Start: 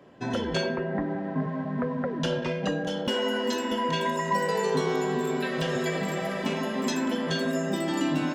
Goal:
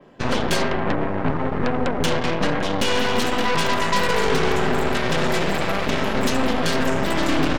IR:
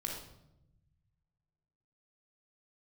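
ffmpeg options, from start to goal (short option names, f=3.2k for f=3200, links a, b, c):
-af "adynamicequalizer=threshold=0.00224:dfrequency=8200:dqfactor=0.88:tfrequency=8200:tqfactor=0.88:attack=5:release=100:ratio=0.375:range=3:mode=cutabove:tftype=bell,atempo=1.1,aeval=exprs='0.178*(cos(1*acos(clip(val(0)/0.178,-1,1)))-cos(1*PI/2))+0.0562*(cos(8*acos(clip(val(0)/0.178,-1,1)))-cos(8*PI/2))':c=same,volume=3.5dB"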